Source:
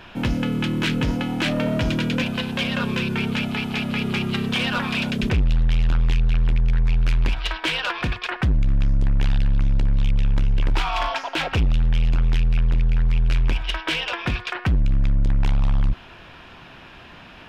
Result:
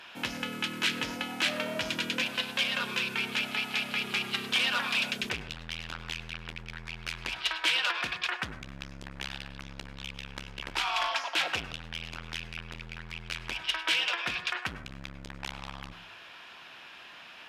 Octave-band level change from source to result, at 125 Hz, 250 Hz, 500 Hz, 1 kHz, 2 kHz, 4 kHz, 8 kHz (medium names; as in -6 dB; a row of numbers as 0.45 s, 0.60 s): -24.0 dB, -17.0 dB, -10.5 dB, -6.0 dB, -3.0 dB, -1.5 dB, no reading